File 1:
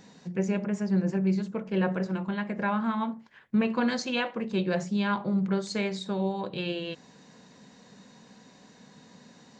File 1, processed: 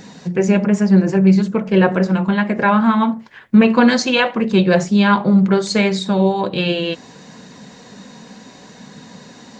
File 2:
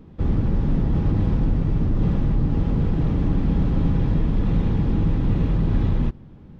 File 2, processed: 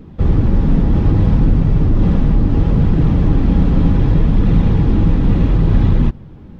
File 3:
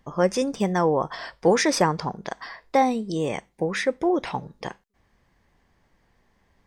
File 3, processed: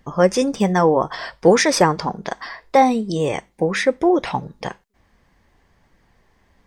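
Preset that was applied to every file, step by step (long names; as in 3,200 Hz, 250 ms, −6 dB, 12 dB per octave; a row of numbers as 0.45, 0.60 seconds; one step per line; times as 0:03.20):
flanger 0.67 Hz, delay 0.4 ms, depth 4.2 ms, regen −65%
normalise the peak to −1.5 dBFS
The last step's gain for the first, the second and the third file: +18.0, +11.5, +9.5 decibels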